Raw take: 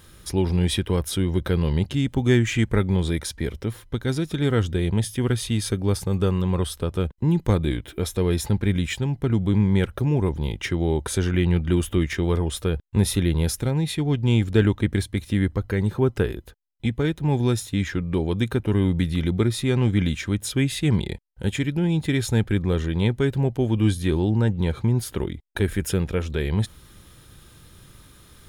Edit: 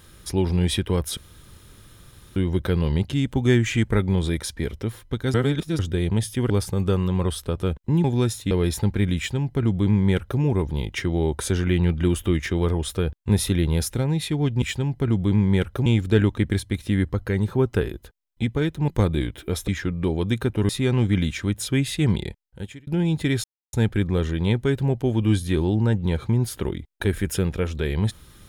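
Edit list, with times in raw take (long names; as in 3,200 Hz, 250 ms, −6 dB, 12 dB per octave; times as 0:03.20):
0:01.17: splice in room tone 1.19 s
0:04.15–0:04.60: reverse
0:05.31–0:05.84: remove
0:07.38–0:08.18: swap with 0:17.31–0:17.78
0:08.84–0:10.08: duplicate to 0:14.29
0:18.79–0:19.53: remove
0:21.03–0:21.71: fade out
0:22.28: splice in silence 0.29 s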